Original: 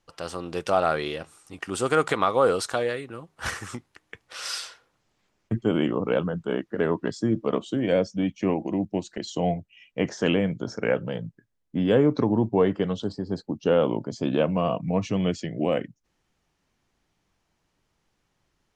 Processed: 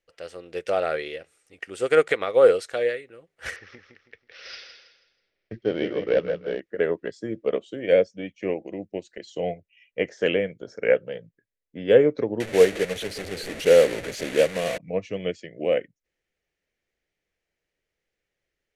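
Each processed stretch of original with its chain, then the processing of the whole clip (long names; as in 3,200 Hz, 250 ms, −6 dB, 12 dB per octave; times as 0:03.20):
0:03.56–0:06.60: variable-slope delta modulation 64 kbit/s + Butterworth low-pass 5,700 Hz 72 dB per octave + repeating echo 162 ms, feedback 34%, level −6.5 dB
0:12.40–0:14.78: linear delta modulator 64 kbit/s, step −21.5 dBFS + notch filter 5,100 Hz, Q 15
whole clip: octave-band graphic EQ 125/250/500/1,000/2,000 Hz −5/−5/+11/−12/+11 dB; expander for the loud parts 1.5 to 1, over −33 dBFS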